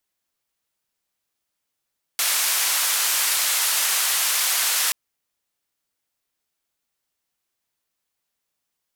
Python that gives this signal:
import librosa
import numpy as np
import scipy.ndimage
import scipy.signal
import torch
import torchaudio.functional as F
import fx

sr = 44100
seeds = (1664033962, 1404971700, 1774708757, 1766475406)

y = fx.band_noise(sr, seeds[0], length_s=2.73, low_hz=960.0, high_hz=14000.0, level_db=-21.5)